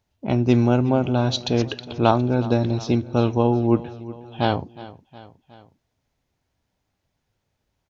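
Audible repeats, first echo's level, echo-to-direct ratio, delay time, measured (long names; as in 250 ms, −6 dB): 3, −18.0 dB, −16.5 dB, 364 ms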